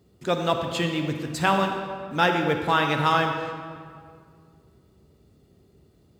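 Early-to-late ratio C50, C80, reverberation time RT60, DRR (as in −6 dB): 5.0 dB, 6.0 dB, 2.1 s, 4.5 dB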